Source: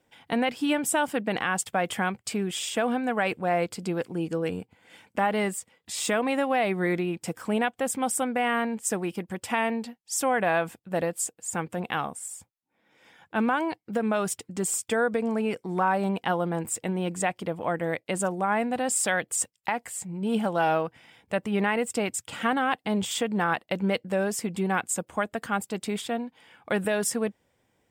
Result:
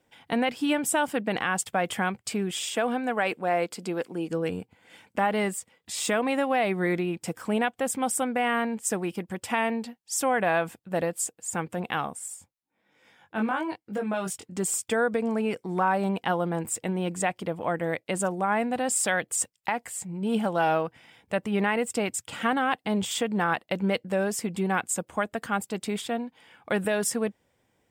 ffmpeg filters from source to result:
ffmpeg -i in.wav -filter_complex "[0:a]asettb=1/sr,asplit=3[link_01][link_02][link_03];[link_01]atrim=end=2.754[link_04];[link_02]atrim=start=2.75:end=4.3,asetpts=PTS-STARTPTS,afade=type=in:duration=0.004:curve=qsin,afade=type=out:start_time=1.546:duration=0.004:curve=qsin,highpass=220[link_05];[link_03]atrim=start=4.296[link_06];[link_04][link_05]acrossfade=duration=0.004:curve1=hsin:curve2=qsin[link_07];[link_07][link_06]acrossfade=duration=0.004:curve1=qsin:curve2=hsin,asplit=3[link_08][link_09][link_10];[link_08]afade=type=out:start_time=12.34:duration=0.02[link_11];[link_09]flanger=delay=19.5:depth=3.3:speed=1,afade=type=in:start_time=12.34:duration=0.02,afade=type=out:start_time=14.53:duration=0.02[link_12];[link_10]afade=type=in:start_time=14.53:duration=0.02[link_13];[link_11][link_12][link_13]amix=inputs=3:normalize=0" out.wav

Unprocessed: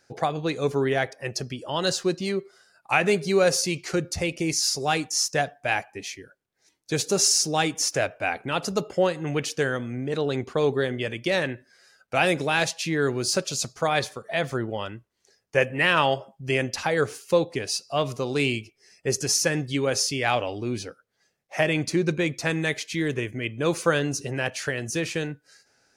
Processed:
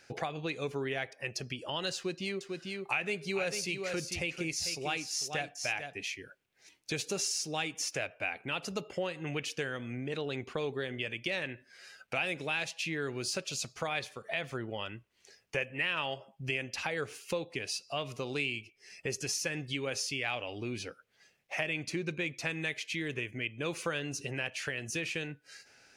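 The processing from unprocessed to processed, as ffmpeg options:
ffmpeg -i in.wav -filter_complex "[0:a]asettb=1/sr,asplit=3[link_01][link_02][link_03];[link_01]atrim=end=1.964[link_04];[link_02]atrim=start=1.96:end=6.02,asetpts=PTS-STARTPTS,afade=type=in:duration=0.004:curve=qsin,afade=type=out:start_time=4.056:duration=0.004:curve=qsin,aecho=1:1:446:0.376,atrim=end_sample=179046[link_05];[link_03]atrim=start=6.016[link_06];[link_04][link_05]acrossfade=duration=0.004:curve1=hsin:curve2=qsin[link_07];[link_07][link_06]acrossfade=duration=0.004:curve1=qsin:curve2=hsin,equalizer=frequency=2600:width_type=o:width=0.87:gain=10,acompressor=threshold=-41dB:ratio=2.5,volume=1.5dB" out.wav

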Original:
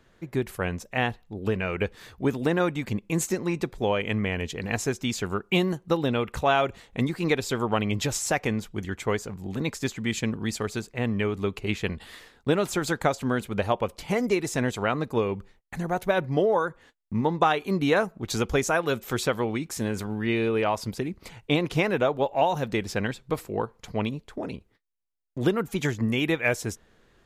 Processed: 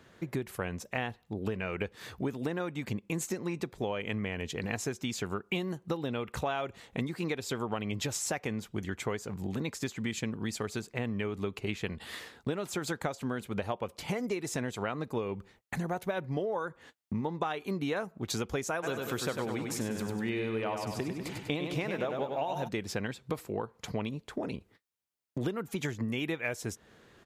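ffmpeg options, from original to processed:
ffmpeg -i in.wav -filter_complex "[0:a]asplit=3[link_01][link_02][link_03];[link_01]afade=type=out:start_time=18.82:duration=0.02[link_04];[link_02]aecho=1:1:98|196|294|392|490|588:0.501|0.241|0.115|0.0554|0.0266|0.0128,afade=type=in:start_time=18.82:duration=0.02,afade=type=out:start_time=22.67:duration=0.02[link_05];[link_03]afade=type=in:start_time=22.67:duration=0.02[link_06];[link_04][link_05][link_06]amix=inputs=3:normalize=0,highpass=77,acompressor=threshold=-36dB:ratio=4,volume=3.5dB" out.wav

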